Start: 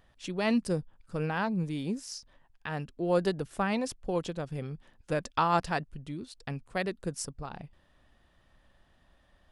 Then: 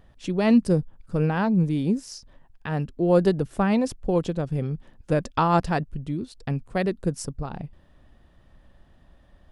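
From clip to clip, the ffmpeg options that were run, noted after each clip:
ffmpeg -i in.wav -af "tiltshelf=frequency=660:gain=5,volume=6dB" out.wav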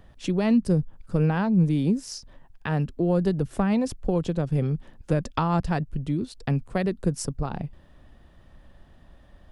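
ffmpeg -i in.wav -filter_complex "[0:a]acrossover=split=180[link_01][link_02];[link_02]acompressor=threshold=-27dB:ratio=4[link_03];[link_01][link_03]amix=inputs=2:normalize=0,volume=3dB" out.wav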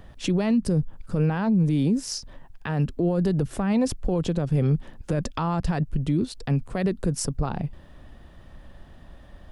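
ffmpeg -i in.wav -af "alimiter=limit=-21dB:level=0:latency=1:release=59,volume=5.5dB" out.wav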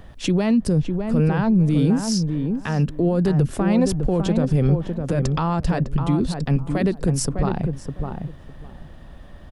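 ffmpeg -i in.wav -filter_complex "[0:a]asplit=2[link_01][link_02];[link_02]adelay=605,lowpass=frequency=1200:poles=1,volume=-5dB,asplit=2[link_03][link_04];[link_04]adelay=605,lowpass=frequency=1200:poles=1,volume=0.19,asplit=2[link_05][link_06];[link_06]adelay=605,lowpass=frequency=1200:poles=1,volume=0.19[link_07];[link_01][link_03][link_05][link_07]amix=inputs=4:normalize=0,volume=3.5dB" out.wav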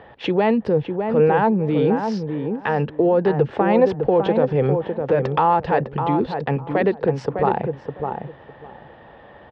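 ffmpeg -i in.wav -af "highpass=160,equalizer=frequency=170:width_type=q:width=4:gain=-8,equalizer=frequency=260:width_type=q:width=4:gain=-6,equalizer=frequency=470:width_type=q:width=4:gain=9,equalizer=frequency=850:width_type=q:width=4:gain=10,equalizer=frequency=1800:width_type=q:width=4:gain=4,lowpass=frequency=3300:width=0.5412,lowpass=frequency=3300:width=1.3066,volume=2.5dB" out.wav

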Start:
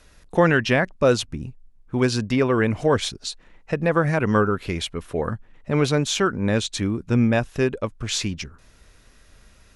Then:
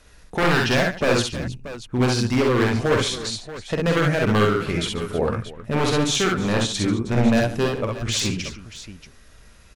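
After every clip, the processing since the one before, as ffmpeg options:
ffmpeg -i in.wav -af "aeval=exprs='0.188*(abs(mod(val(0)/0.188+3,4)-2)-1)':channel_layout=same,aecho=1:1:48|65|141|317|632:0.596|0.668|0.178|0.158|0.211" out.wav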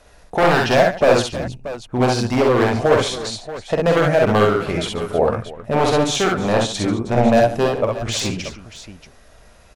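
ffmpeg -i in.wav -af "equalizer=frequency=680:width=1.4:gain=11.5" out.wav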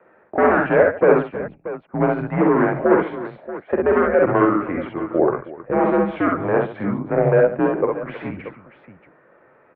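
ffmpeg -i in.wav -af "highpass=frequency=260:width_type=q:width=0.5412,highpass=frequency=260:width_type=q:width=1.307,lowpass=frequency=2100:width_type=q:width=0.5176,lowpass=frequency=2100:width_type=q:width=0.7071,lowpass=frequency=2100:width_type=q:width=1.932,afreqshift=-91" out.wav

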